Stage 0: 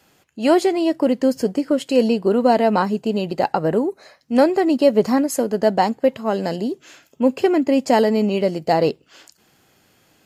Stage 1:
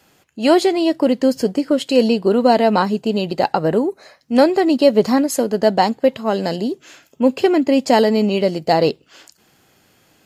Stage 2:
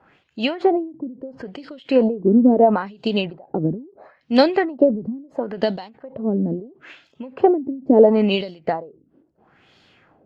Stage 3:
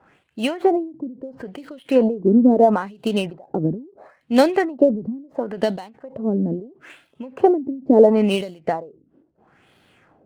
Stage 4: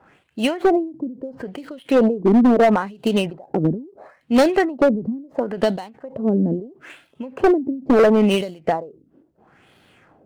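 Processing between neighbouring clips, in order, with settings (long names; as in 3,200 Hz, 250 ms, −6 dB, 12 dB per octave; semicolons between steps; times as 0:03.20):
dynamic equaliser 3,800 Hz, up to +6 dB, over −46 dBFS, Q 1.9; level +2 dB
auto-filter low-pass sine 0.74 Hz 250–3,900 Hz; every ending faded ahead of time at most 130 dB per second; level −1 dB
running median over 9 samples
gain into a clipping stage and back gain 12.5 dB; level +2.5 dB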